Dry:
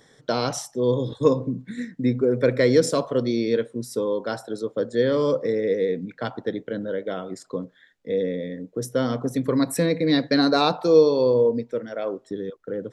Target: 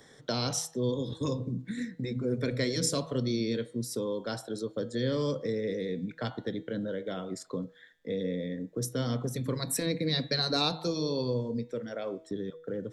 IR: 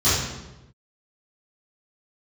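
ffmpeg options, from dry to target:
-filter_complex "[0:a]acrossover=split=210|3000[a][b][c];[b]acompressor=threshold=-39dB:ratio=2[d];[a][d][c]amix=inputs=3:normalize=0,bandreject=f=161.4:t=h:w=4,bandreject=f=322.8:t=h:w=4,bandreject=f=484.2:t=h:w=4,bandreject=f=645.6:t=h:w=4,bandreject=f=807:t=h:w=4,bandreject=f=968.4:t=h:w=4,bandreject=f=1.1298k:t=h:w=4,bandreject=f=1.2912k:t=h:w=4,bandreject=f=1.4526k:t=h:w=4,bandreject=f=1.614k:t=h:w=4,bandreject=f=1.7754k:t=h:w=4,bandreject=f=1.9368k:t=h:w=4,bandreject=f=2.0982k:t=h:w=4,bandreject=f=2.2596k:t=h:w=4,bandreject=f=2.421k:t=h:w=4,bandreject=f=2.5824k:t=h:w=4,bandreject=f=2.7438k:t=h:w=4,bandreject=f=2.9052k:t=h:w=4,bandreject=f=3.0666k:t=h:w=4,bandreject=f=3.228k:t=h:w=4,bandreject=f=3.3894k:t=h:w=4,bandreject=f=3.5508k:t=h:w=4,bandreject=f=3.7122k:t=h:w=4,bandreject=f=3.8736k:t=h:w=4,bandreject=f=4.035k:t=h:w=4,bandreject=f=4.1964k:t=h:w=4,bandreject=f=4.3578k:t=h:w=4,afftfilt=real='re*lt(hypot(re,im),0.398)':imag='im*lt(hypot(re,im),0.398)':win_size=1024:overlap=0.75"

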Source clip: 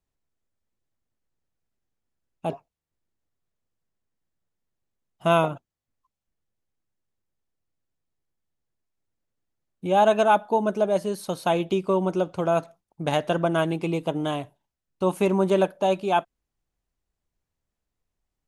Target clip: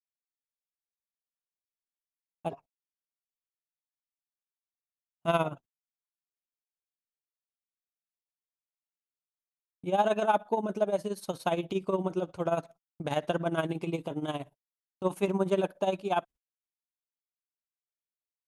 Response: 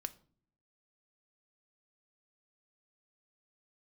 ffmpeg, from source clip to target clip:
-af "agate=range=-37dB:threshold=-43dB:ratio=16:detection=peak,tremolo=f=17:d=0.75,acontrast=32,volume=-8.5dB"

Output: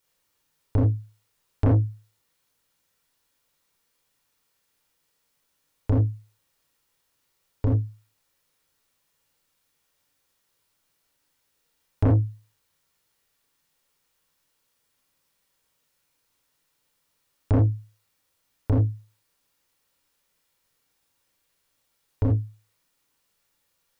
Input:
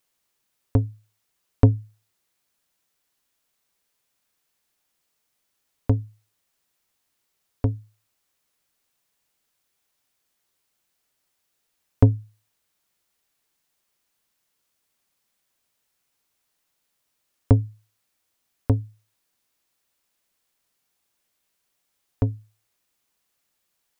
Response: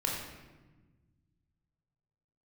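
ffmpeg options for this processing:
-filter_complex "[1:a]atrim=start_sample=2205,atrim=end_sample=4410[a];[0:a][a]afir=irnorm=-1:irlink=0,asoftclip=type=tanh:threshold=-14dB,volume=-1.5dB"

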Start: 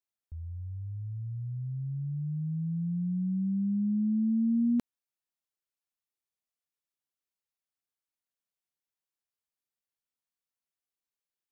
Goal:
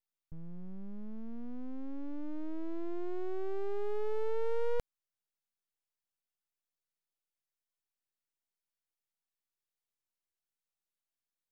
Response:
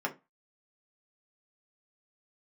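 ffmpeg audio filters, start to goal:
-af "aeval=exprs='abs(val(0))':c=same,volume=-1.5dB"

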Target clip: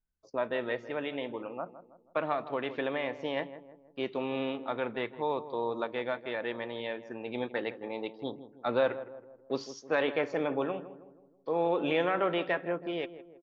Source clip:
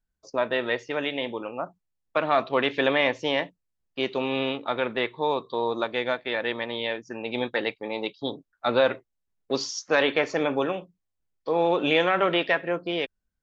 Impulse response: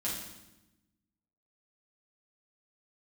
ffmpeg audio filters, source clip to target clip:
-filter_complex "[0:a]lowpass=f=1.8k:p=1,asettb=1/sr,asplit=3[a][b][c];[a]atrim=end=2.324[d];[b]atrim=start=2.32:end=3.37,asetpts=PTS-STARTPTS,afade=t=in:d=0.004:c=qsin,afade=t=out:st=1.046:d=0.004:c=qsin,acompressor=threshold=-23dB:ratio=6[e];[c]atrim=start=3.366[f];[d][e]acrossfade=d=0.004:c1=hsin:c2=qsin[g];[g][f]acrossfade=d=0.004:c1=qsin:c2=hsin,asplit=2[h][i];[i]adelay=161,lowpass=f=1.1k:p=1,volume=-12.5dB,asplit=2[j][k];[k]adelay=161,lowpass=f=1.1k:p=1,volume=0.5,asplit=2[l][m];[m]adelay=161,lowpass=f=1.1k:p=1,volume=0.5,asplit=2[n][o];[o]adelay=161,lowpass=f=1.1k:p=1,volume=0.5,asplit=2[p][q];[q]adelay=161,lowpass=f=1.1k:p=1,volume=0.5[r];[h][j][l][n][p][r]amix=inputs=6:normalize=0,volume=-5.5dB"

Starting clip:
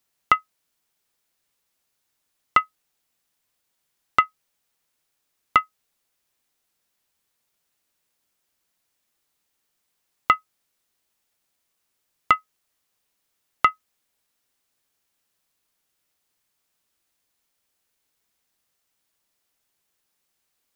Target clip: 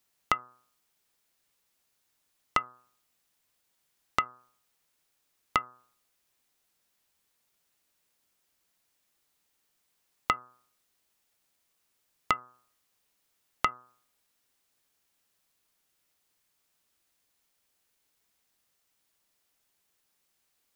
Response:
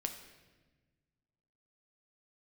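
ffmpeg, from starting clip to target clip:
-af "acompressor=threshold=-26dB:ratio=3,bandreject=f=123.8:t=h:w=4,bandreject=f=247.6:t=h:w=4,bandreject=f=371.4:t=h:w=4,bandreject=f=495.2:t=h:w=4,bandreject=f=619:t=h:w=4,bandreject=f=742.8:t=h:w=4,bandreject=f=866.6:t=h:w=4,bandreject=f=990.4:t=h:w=4,bandreject=f=1.1142k:t=h:w=4,bandreject=f=1.238k:t=h:w=4,bandreject=f=1.3618k:t=h:w=4,bandreject=f=1.4856k:t=h:w=4,bandreject=f=1.6094k:t=h:w=4,bandreject=f=1.7332k:t=h:w=4"

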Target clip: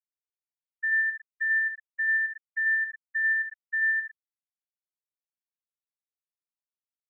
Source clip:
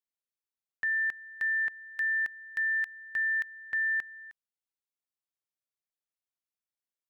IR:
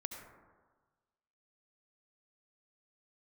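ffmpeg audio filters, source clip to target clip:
-filter_complex "[1:a]atrim=start_sample=2205,afade=t=out:st=0.26:d=0.01,atrim=end_sample=11907[a];[0:a][a]afir=irnorm=-1:irlink=0,afftfilt=real='re*gte(hypot(re,im),0.158)':imag='im*gte(hypot(re,im),0.158)':win_size=1024:overlap=0.75,volume=5.5dB"

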